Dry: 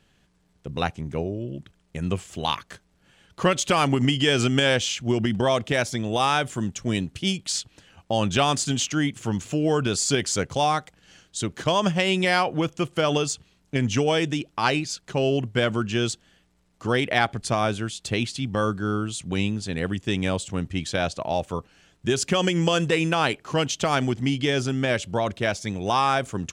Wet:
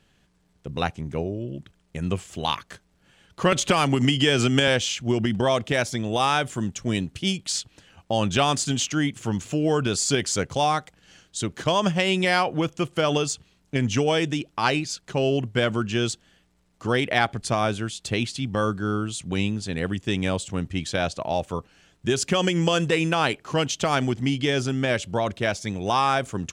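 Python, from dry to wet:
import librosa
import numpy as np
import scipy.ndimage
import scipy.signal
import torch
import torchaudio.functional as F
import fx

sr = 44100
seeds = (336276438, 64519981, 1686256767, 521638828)

y = fx.band_squash(x, sr, depth_pct=70, at=(3.52, 4.68))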